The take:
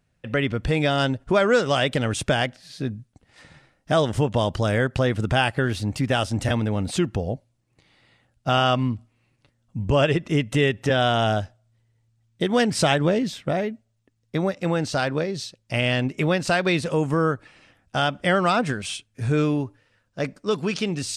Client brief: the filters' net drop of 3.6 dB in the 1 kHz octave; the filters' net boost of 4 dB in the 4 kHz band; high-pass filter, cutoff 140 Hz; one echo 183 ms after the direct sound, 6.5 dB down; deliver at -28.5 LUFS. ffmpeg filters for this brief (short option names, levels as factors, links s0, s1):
-af "highpass=140,equalizer=f=1000:t=o:g=-6,equalizer=f=4000:t=o:g=6,aecho=1:1:183:0.473,volume=0.562"